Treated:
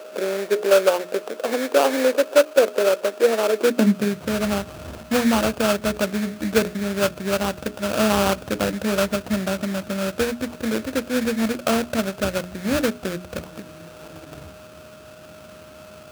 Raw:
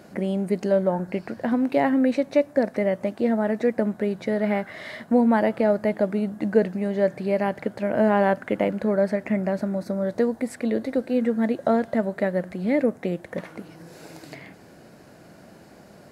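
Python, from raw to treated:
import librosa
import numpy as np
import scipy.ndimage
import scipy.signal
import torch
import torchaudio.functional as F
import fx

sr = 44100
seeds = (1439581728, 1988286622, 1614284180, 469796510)

y = x + 10.0 ** (-42.0 / 20.0) * np.sin(2.0 * np.pi * 620.0 * np.arange(len(x)) / sr)
y = fx.sample_hold(y, sr, seeds[0], rate_hz=2000.0, jitter_pct=20)
y = fx.filter_sweep_highpass(y, sr, from_hz=450.0, to_hz=67.0, start_s=3.52, end_s=4.39, q=3.2)
y = fx.hum_notches(y, sr, base_hz=60, count=7)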